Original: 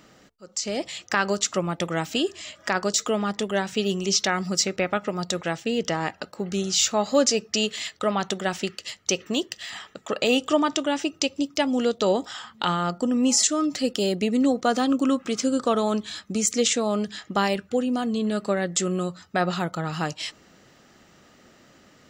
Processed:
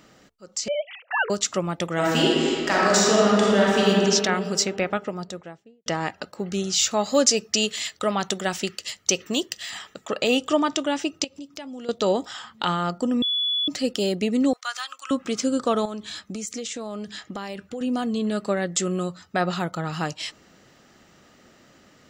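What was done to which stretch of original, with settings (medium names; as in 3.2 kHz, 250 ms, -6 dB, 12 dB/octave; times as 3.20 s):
0.68–1.30 s: formants replaced by sine waves
1.93–3.89 s: reverb throw, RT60 2.5 s, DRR -6 dB
4.78–5.86 s: studio fade out
6.91–10.05 s: treble shelf 5.6 kHz +7.5 dB
11.24–11.89 s: compression 3:1, threshold -39 dBFS
13.22–13.68 s: bleep 3.42 kHz -21 dBFS
14.53–15.11 s: high-pass 1.2 kHz 24 dB/octave
15.85–17.81 s: compression, threshold -29 dBFS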